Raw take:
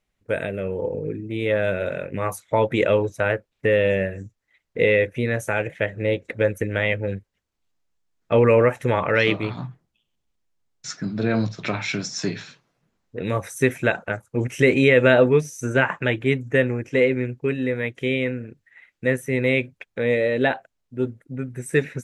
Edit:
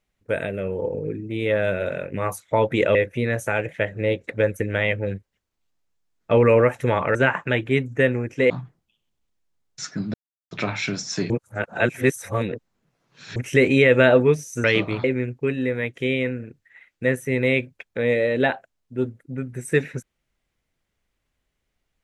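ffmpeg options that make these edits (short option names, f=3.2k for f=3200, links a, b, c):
-filter_complex "[0:a]asplit=10[a][b][c][d][e][f][g][h][i][j];[a]atrim=end=2.952[k];[b]atrim=start=4.958:end=9.162[l];[c]atrim=start=15.698:end=17.052[m];[d]atrim=start=9.558:end=11.2,asetpts=PTS-STARTPTS,afade=t=out:st=1.638:d=0.004:c=hsin[n];[e]atrim=start=11.2:end=11.57,asetpts=PTS-STARTPTS,volume=0[o];[f]atrim=start=11.57:end=12.362,asetpts=PTS-STARTPTS,afade=t=in:d=0.004:c=hsin[p];[g]atrim=start=12.358:end=14.422,asetpts=PTS-STARTPTS,areverse[q];[h]atrim=start=14.418:end=15.702[r];[i]atrim=start=9.158:end=9.562[s];[j]atrim=start=17.048[t];[k][l]acrossfade=d=0.004:c1=hsin:c2=hsin[u];[u][m]acrossfade=d=0.004:c1=hsin:c2=hsin[v];[n][o][p]concat=n=3:v=0:a=1[w];[v][w]acrossfade=d=0.004:c1=hsin:c2=hsin[x];[x][q]acrossfade=d=0.004:c1=hsin:c2=hsin[y];[y][r]acrossfade=d=0.004:c1=hsin:c2=hsin[z];[z][s]acrossfade=d=0.004:c1=hsin:c2=hsin[aa];[aa][t]acrossfade=d=0.004:c1=hsin:c2=hsin"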